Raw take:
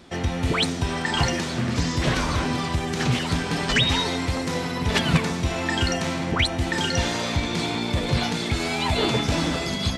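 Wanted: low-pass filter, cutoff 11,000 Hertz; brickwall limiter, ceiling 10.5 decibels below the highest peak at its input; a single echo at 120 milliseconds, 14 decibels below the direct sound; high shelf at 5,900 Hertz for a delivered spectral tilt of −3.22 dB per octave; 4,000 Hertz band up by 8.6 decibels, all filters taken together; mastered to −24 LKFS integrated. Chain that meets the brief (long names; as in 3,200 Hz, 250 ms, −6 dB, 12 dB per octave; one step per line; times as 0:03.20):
low-pass filter 11,000 Hz
parametric band 4,000 Hz +8.5 dB
high-shelf EQ 5,900 Hz +6 dB
brickwall limiter −13.5 dBFS
single-tap delay 120 ms −14 dB
level −2 dB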